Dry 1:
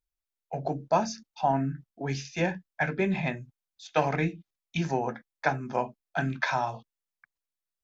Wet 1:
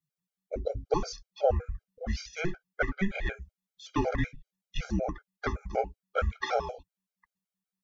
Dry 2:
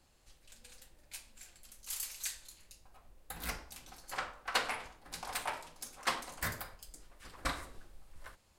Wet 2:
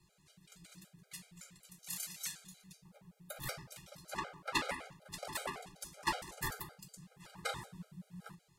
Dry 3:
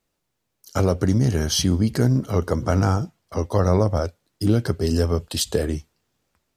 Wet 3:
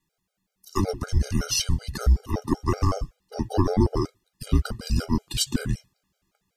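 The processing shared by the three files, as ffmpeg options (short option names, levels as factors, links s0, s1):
-af "equalizer=f=87:t=o:w=0.22:g=-12.5,afreqshift=-190,afftfilt=real='re*gt(sin(2*PI*5.3*pts/sr)*(1-2*mod(floor(b*sr/1024/410),2)),0)':imag='im*gt(sin(2*PI*5.3*pts/sr)*(1-2*mod(floor(b*sr/1024/410),2)),0)':win_size=1024:overlap=0.75,volume=1.19"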